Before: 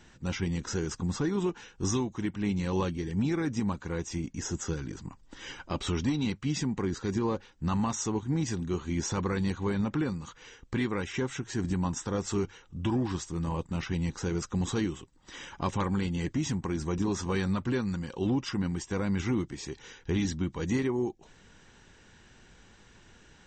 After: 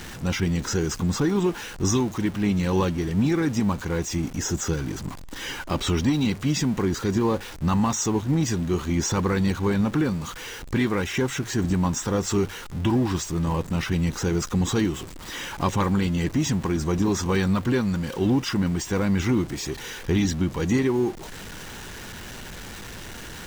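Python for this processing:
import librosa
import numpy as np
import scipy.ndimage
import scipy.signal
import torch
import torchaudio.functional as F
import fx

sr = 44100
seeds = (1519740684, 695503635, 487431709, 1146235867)

y = x + 0.5 * 10.0 ** (-40.0 / 20.0) * np.sign(x)
y = F.gain(torch.from_numpy(y), 6.0).numpy()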